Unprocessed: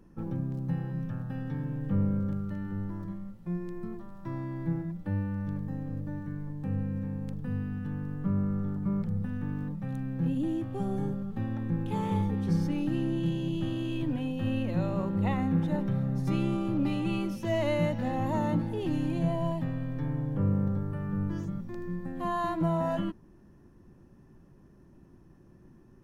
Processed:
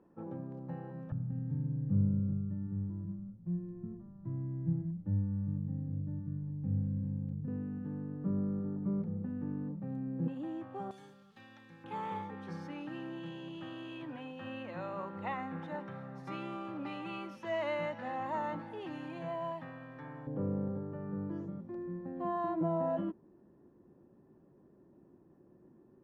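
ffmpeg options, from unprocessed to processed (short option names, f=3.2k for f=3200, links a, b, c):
-af "asetnsamples=n=441:p=0,asendcmd='1.12 bandpass f 120;7.48 bandpass f 350;10.28 bandpass f 990;10.91 bandpass f 4100;11.84 bandpass f 1300;20.27 bandpass f 460',bandpass=f=630:t=q:w=1:csg=0"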